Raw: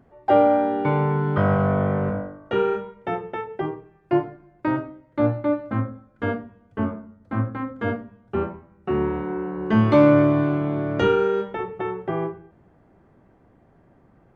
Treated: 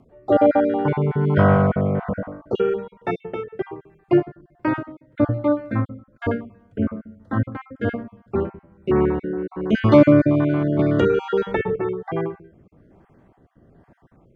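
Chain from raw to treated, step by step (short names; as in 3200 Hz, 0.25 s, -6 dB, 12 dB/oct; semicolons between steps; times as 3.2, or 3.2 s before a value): random spectral dropouts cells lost 28%; rotary speaker horn 1.2 Hz; 10.79–11.76 three-band squash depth 100%; gain +5 dB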